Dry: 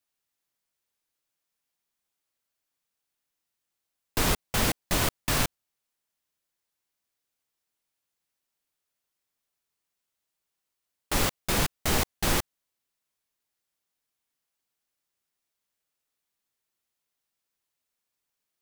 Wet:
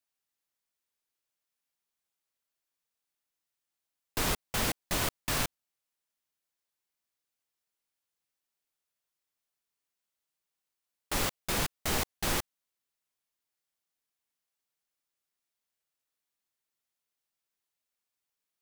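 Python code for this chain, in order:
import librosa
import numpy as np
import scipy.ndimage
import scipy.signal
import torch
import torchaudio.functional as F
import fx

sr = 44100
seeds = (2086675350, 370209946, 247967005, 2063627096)

y = fx.low_shelf(x, sr, hz=350.0, db=-3.0)
y = y * 10.0 ** (-4.0 / 20.0)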